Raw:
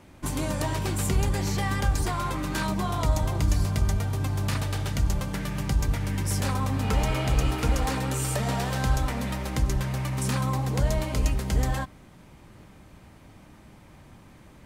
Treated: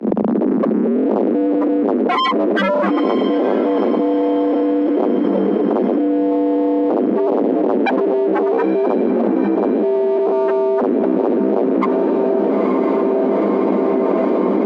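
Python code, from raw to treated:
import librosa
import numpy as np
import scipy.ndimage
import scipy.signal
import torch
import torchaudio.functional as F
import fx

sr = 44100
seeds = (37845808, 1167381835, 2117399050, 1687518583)

y = fx.tape_start_head(x, sr, length_s=1.13)
y = fx.spec_topn(y, sr, count=2)
y = fx.leveller(y, sr, passes=3)
y = fx.lowpass(y, sr, hz=1300.0, slope=6)
y = fx.fold_sine(y, sr, drive_db=11, ceiling_db=-15.5)
y = scipy.signal.sosfilt(scipy.signal.butter(16, 200.0, 'highpass', fs=sr, output='sos'), y)
y = fx.peak_eq(y, sr, hz=430.0, db=4.5, octaves=1.2)
y = fx.echo_diffused(y, sr, ms=915, feedback_pct=55, wet_db=-12.0)
y = fx.env_flatten(y, sr, amount_pct=100)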